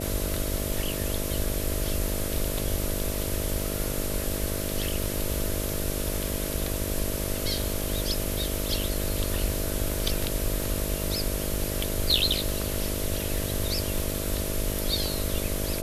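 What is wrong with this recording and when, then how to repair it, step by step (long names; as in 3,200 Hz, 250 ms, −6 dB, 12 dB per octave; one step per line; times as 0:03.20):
mains buzz 50 Hz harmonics 13 −33 dBFS
surface crackle 21 per second −33 dBFS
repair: click removal
hum removal 50 Hz, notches 13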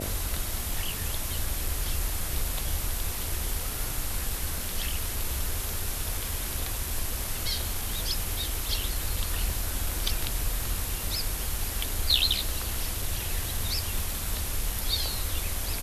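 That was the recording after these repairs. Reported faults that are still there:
none of them is left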